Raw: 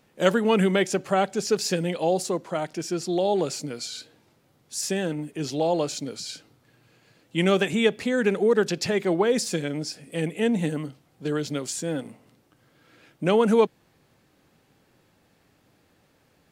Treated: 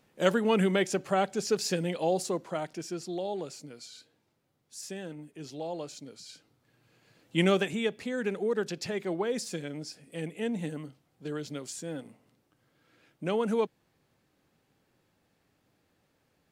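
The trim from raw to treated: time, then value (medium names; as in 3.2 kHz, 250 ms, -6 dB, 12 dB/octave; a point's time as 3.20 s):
2.45 s -4.5 dB
3.54 s -13 dB
6.21 s -13 dB
7.39 s -1.5 dB
7.81 s -9 dB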